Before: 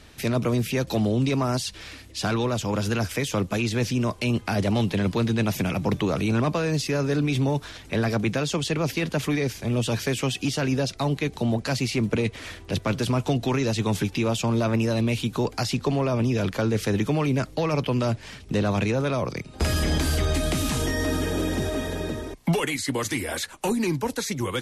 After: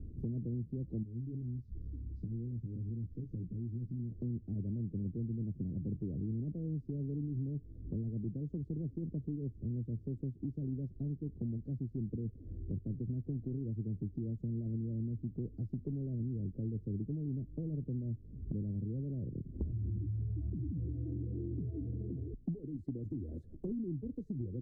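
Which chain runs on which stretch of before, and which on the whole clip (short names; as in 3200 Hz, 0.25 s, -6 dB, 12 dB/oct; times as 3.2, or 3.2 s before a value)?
1.03–4.12 compressor 4:1, threshold -32 dBFS + fixed phaser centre 2600 Hz, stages 6 + doubler 17 ms -6 dB
19.72–22.34 spectral contrast raised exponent 1.7 + frequency shift +31 Hz
whole clip: inverse Chebyshev low-pass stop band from 930 Hz, stop band 50 dB; low shelf 150 Hz +9.5 dB; compressor 4:1, threshold -39 dBFS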